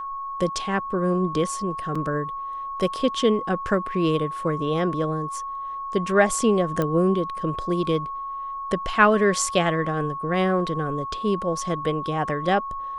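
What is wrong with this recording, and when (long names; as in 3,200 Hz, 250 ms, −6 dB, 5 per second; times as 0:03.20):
whistle 1,100 Hz −29 dBFS
0:01.95: drop-out 4.8 ms
0:06.82: click −12 dBFS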